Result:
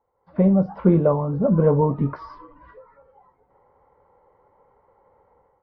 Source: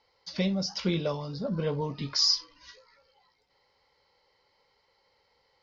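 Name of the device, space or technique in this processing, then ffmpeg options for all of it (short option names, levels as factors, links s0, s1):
action camera in a waterproof case: -af "lowpass=f=1200:w=0.5412,lowpass=f=1200:w=1.3066,dynaudnorm=f=140:g=5:m=5.62,volume=0.841" -ar 32000 -c:a aac -b:a 48k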